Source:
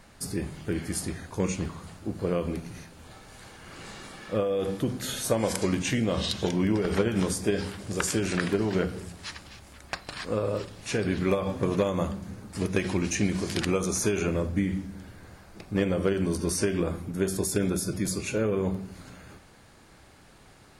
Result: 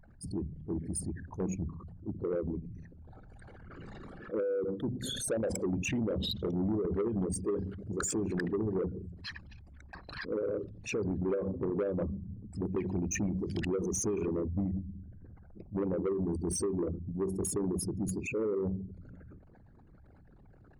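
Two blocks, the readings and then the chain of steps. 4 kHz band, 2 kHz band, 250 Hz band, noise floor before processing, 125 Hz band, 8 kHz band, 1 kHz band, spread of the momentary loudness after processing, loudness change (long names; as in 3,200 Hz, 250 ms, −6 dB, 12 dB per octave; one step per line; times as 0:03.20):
−8.0 dB, −9.5 dB, −5.5 dB, −54 dBFS, −6.0 dB, −5.5 dB, −10.5 dB, 16 LU, −5.5 dB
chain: spectral envelope exaggerated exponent 3
soft clipping −22.5 dBFS, distortion −14 dB
level that may rise only so fast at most 320 dB per second
level −3 dB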